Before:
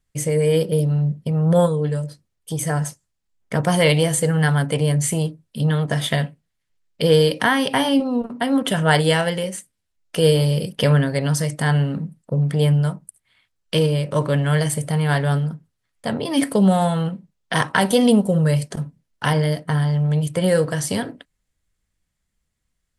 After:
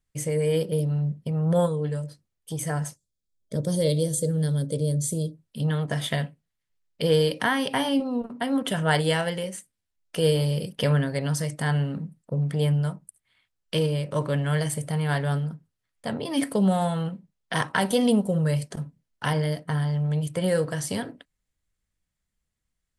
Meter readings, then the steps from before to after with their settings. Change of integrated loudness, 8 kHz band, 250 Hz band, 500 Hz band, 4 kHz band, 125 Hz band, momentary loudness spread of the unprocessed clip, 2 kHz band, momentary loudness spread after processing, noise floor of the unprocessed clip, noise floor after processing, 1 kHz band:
−6.0 dB, −6.0 dB, −6.0 dB, −6.0 dB, −6.5 dB, −6.0 dB, 11 LU, −6.5 dB, 11 LU, −76 dBFS, −81 dBFS, −6.5 dB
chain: gain on a spectral selection 0:02.97–0:05.35, 640–3,200 Hz −18 dB
level −6 dB

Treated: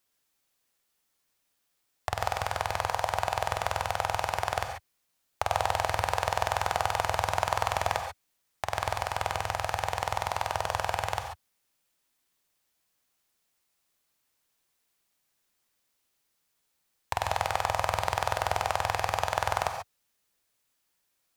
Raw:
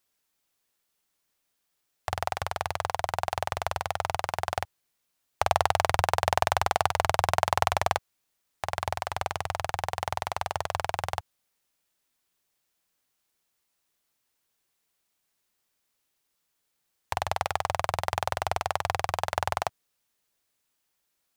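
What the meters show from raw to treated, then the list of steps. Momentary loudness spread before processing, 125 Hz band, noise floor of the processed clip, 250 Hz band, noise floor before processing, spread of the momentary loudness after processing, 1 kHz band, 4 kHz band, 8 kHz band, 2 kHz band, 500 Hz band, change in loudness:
8 LU, −1.0 dB, −77 dBFS, −1.5 dB, −78 dBFS, 7 LU, −0.5 dB, −0.5 dB, 0.0 dB, 0.0 dB, −1.0 dB, −0.5 dB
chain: brickwall limiter −9 dBFS, peak gain reduction 5 dB
reverb whose tail is shaped and stops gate 160 ms rising, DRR 5 dB

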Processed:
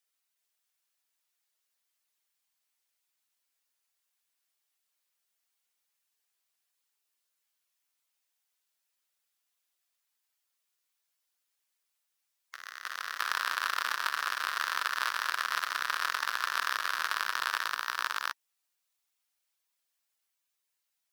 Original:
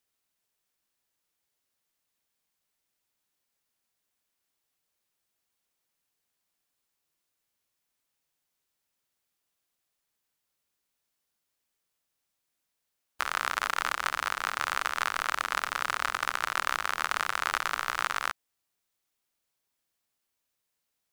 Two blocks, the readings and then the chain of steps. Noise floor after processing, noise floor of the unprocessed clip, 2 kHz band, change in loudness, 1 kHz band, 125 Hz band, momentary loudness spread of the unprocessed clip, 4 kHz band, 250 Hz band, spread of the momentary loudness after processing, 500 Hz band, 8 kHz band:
−82 dBFS, −82 dBFS, −0.5 dB, −1.5 dB, −2.5 dB, below −15 dB, 2 LU, +1.0 dB, below −10 dB, 8 LU, −8.0 dB, −2.5 dB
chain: spectral magnitudes quantised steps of 15 dB
high-pass filter 1,200 Hz 6 dB per octave
delay with pitch and tempo change per echo 387 ms, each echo +1 semitone, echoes 2, each echo −6 dB

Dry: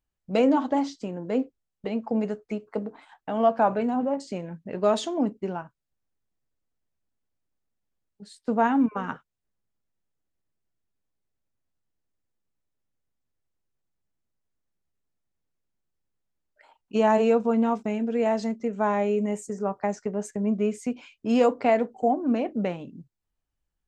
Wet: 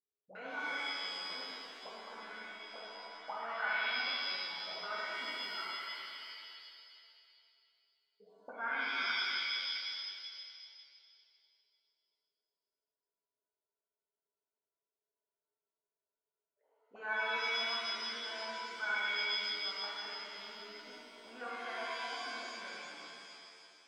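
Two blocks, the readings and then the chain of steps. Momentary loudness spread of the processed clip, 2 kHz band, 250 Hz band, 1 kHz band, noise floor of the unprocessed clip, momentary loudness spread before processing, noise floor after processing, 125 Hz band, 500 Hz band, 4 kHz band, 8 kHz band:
17 LU, +3.0 dB, −32.0 dB, −13.5 dB, −83 dBFS, 14 LU, below −85 dBFS, below −30 dB, −23.5 dB, +8.0 dB, −10.0 dB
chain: envelope filter 420–1,500 Hz, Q 18, up, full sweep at −25.5 dBFS
reverb with rising layers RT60 2.3 s, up +7 semitones, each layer −2 dB, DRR −7 dB

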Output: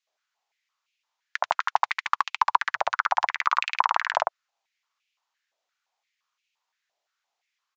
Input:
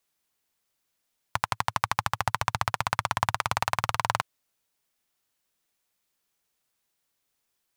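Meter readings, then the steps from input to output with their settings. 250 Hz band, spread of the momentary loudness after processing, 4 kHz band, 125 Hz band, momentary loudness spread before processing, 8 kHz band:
below −15 dB, 5 LU, −0.5 dB, below −30 dB, 5 LU, −8.5 dB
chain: stylus tracing distortion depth 0.12 ms
high-frequency loss of the air 61 metres
multiband delay without the direct sound highs, lows 70 ms, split 1,600 Hz
downsampling to 16,000 Hz
high-pass on a step sequencer 5.8 Hz 640–2,500 Hz

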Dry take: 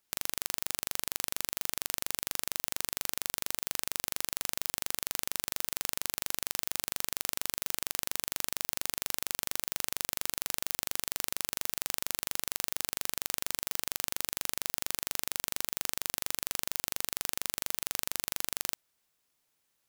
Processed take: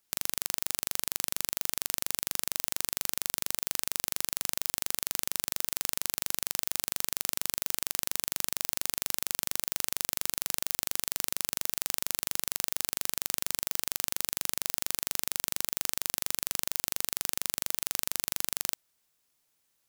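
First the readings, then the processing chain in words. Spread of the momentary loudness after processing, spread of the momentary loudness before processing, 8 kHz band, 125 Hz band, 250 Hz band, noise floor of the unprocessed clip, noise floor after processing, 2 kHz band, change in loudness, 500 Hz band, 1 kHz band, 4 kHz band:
0 LU, 0 LU, +3.0 dB, +1.0 dB, +0.5 dB, −78 dBFS, −75 dBFS, 0.0 dB, +2.5 dB, 0.0 dB, 0.0 dB, +1.5 dB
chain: bass and treble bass +1 dB, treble +3 dB

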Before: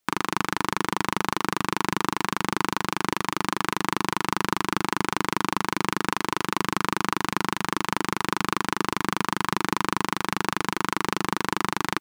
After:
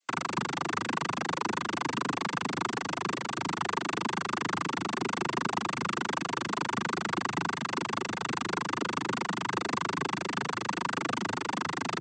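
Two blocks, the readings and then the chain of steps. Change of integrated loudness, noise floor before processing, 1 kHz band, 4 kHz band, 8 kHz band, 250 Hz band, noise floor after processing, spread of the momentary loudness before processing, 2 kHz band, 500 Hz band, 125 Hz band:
−5.5 dB, −60 dBFS, −6.0 dB, −6.0 dB, −6.5 dB, −6.0 dB, −41 dBFS, 1 LU, −5.0 dB, −4.5 dB, −5.5 dB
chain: cochlear-implant simulation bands 16
level −4.5 dB

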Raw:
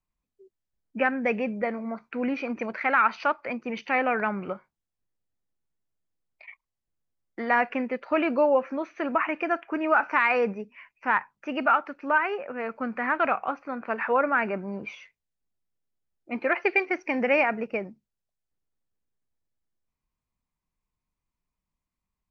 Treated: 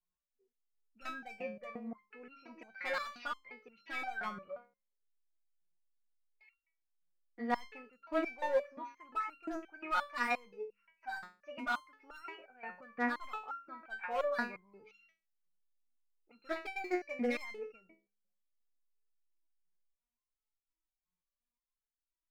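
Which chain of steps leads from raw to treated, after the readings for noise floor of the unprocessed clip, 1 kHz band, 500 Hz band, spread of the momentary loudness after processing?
below −85 dBFS, −14.0 dB, −13.5 dB, 16 LU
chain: hard clipping −18.5 dBFS, distortion −13 dB
hum removal 68.3 Hz, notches 8
step-sequenced resonator 5.7 Hz 180–1,400 Hz
level +2.5 dB

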